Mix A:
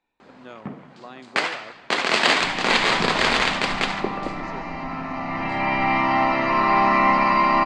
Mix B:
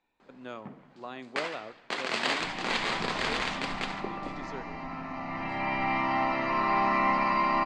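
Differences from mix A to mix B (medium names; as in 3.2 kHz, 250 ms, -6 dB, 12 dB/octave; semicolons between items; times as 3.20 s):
first sound -11.0 dB; second sound -8.0 dB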